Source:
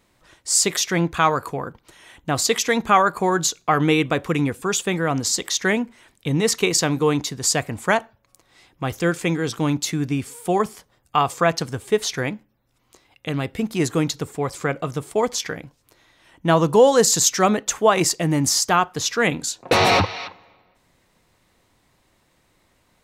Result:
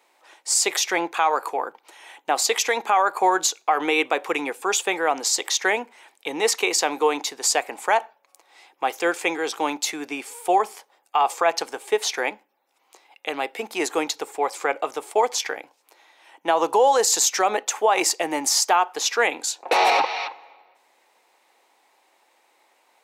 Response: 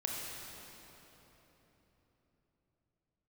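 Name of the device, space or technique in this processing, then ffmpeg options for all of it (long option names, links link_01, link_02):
laptop speaker: -af "highpass=frequency=370:width=0.5412,highpass=frequency=370:width=1.3066,equalizer=frequency=830:width_type=o:width=0.35:gain=11,equalizer=frequency=2400:width_type=o:width=0.43:gain=4.5,alimiter=limit=-9dB:level=0:latency=1:release=91,highpass=90"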